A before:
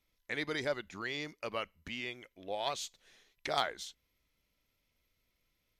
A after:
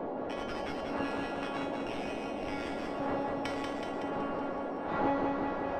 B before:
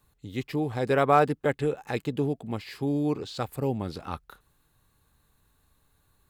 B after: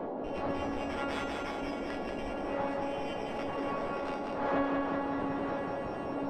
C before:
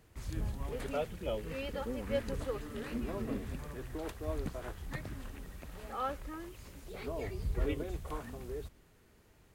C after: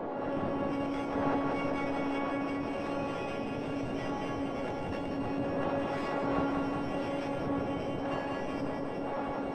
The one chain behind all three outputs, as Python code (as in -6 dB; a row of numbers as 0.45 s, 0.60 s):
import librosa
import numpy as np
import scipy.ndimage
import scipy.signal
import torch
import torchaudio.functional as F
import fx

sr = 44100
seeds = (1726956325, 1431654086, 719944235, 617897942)

y = np.r_[np.sort(x[:len(x) // 16 * 16].reshape(-1, 16), axis=1).ravel(), x[len(x) // 16 * 16:]]
y = fx.recorder_agc(y, sr, target_db=-16.0, rise_db_per_s=39.0, max_gain_db=30)
y = fx.dmg_wind(y, sr, seeds[0], corner_hz=610.0, level_db=-23.0)
y = fx.low_shelf(y, sr, hz=140.0, db=9.0)
y = fx.spec_gate(y, sr, threshold_db=-10, keep='weak')
y = fx.vibrato(y, sr, rate_hz=5.2, depth_cents=12.0)
y = fx.comb_fb(y, sr, f0_hz=280.0, decay_s=0.49, harmonics='all', damping=0.0, mix_pct=90)
y = fx.echo_feedback(y, sr, ms=187, feedback_pct=59, wet_db=-5.0)
y = fx.dmg_noise_band(y, sr, seeds[1], low_hz=200.0, high_hz=800.0, level_db=-47.0)
y = fx.spacing_loss(y, sr, db_at_10k=25)
y = fx.env_flatten(y, sr, amount_pct=50)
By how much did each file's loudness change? +3.0 LU, -6.5 LU, +6.0 LU